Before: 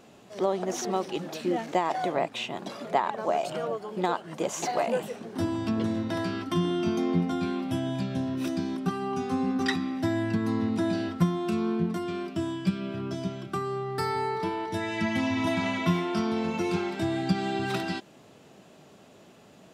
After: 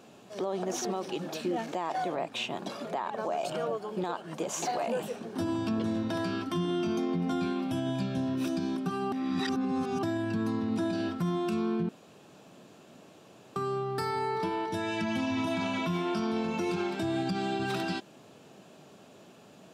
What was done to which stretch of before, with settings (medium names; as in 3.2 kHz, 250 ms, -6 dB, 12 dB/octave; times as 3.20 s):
9.12–10.03 s: reverse
11.89–13.56 s: room tone
whole clip: high-pass 97 Hz; band-stop 2 kHz, Q 12; peak limiter -22.5 dBFS